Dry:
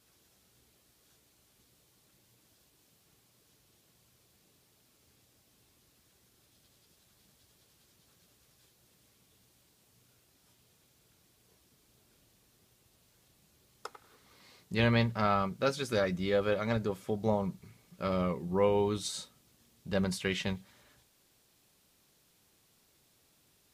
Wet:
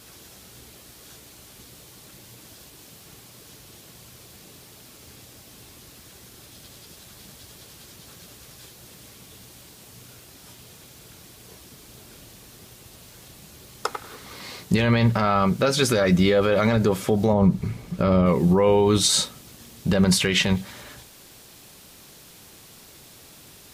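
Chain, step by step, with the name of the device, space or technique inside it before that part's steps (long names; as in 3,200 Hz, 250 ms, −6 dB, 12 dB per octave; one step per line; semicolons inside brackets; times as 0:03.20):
0:17.33–0:18.26: spectral tilt −2 dB per octave
loud club master (downward compressor 2.5 to 1, threshold −32 dBFS, peak gain reduction 7.5 dB; hard clipping −20 dBFS, distortion −37 dB; boost into a limiter +28.5 dB)
level −8 dB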